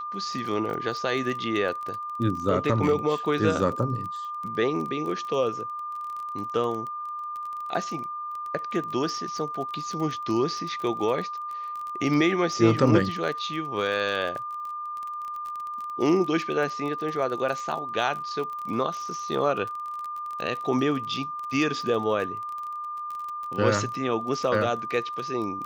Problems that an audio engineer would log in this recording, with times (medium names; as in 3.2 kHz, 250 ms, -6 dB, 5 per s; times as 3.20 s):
crackle 27 per s -32 dBFS
whine 1.2 kHz -31 dBFS